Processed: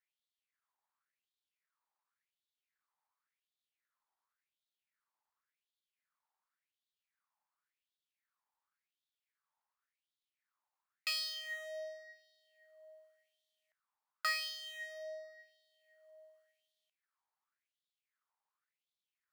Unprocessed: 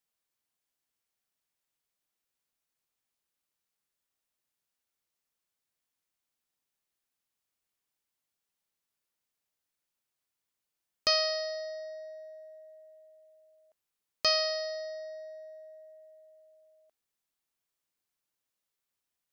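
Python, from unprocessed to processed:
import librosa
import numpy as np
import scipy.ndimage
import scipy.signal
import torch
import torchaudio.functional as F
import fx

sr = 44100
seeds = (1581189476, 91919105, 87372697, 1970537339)

y = scipy.ndimage.median_filter(x, 15, mode='constant')
y = fx.filter_lfo_highpass(y, sr, shape='sine', hz=0.91, low_hz=860.0, high_hz=3600.0, q=5.3)
y = y * librosa.db_to_amplitude(-2.5)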